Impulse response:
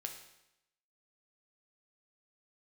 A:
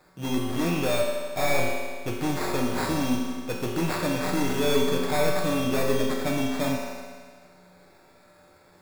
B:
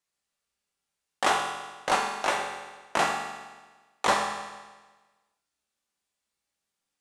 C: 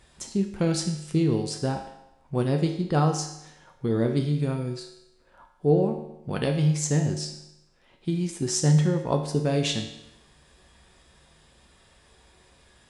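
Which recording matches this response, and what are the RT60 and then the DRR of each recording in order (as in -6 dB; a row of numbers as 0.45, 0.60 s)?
C; 1.7, 1.3, 0.85 s; -2.0, 0.5, 3.0 dB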